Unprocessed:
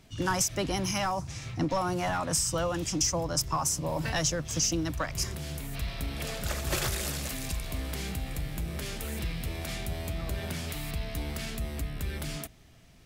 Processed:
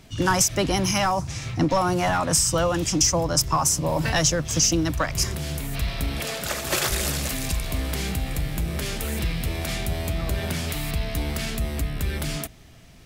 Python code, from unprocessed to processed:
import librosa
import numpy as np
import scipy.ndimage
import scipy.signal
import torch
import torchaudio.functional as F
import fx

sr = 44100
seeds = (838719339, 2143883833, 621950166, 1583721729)

y = fx.highpass(x, sr, hz=280.0, slope=6, at=(6.2, 6.91))
y = y * 10.0 ** (7.5 / 20.0)